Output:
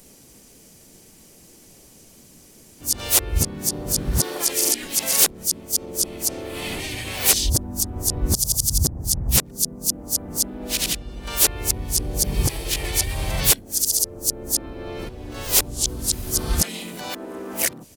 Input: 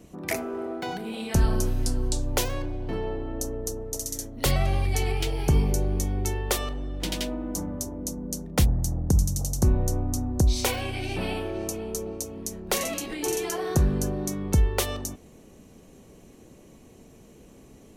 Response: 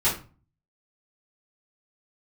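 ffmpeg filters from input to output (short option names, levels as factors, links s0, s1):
-filter_complex "[0:a]areverse,crystalizer=i=5:c=0,asplit=4[s0][s1][s2][s3];[s1]asetrate=35002,aresample=44100,atempo=1.25992,volume=0.794[s4];[s2]asetrate=52444,aresample=44100,atempo=0.840896,volume=0.355[s5];[s3]asetrate=58866,aresample=44100,atempo=0.749154,volume=0.398[s6];[s0][s4][s5][s6]amix=inputs=4:normalize=0,volume=0.562"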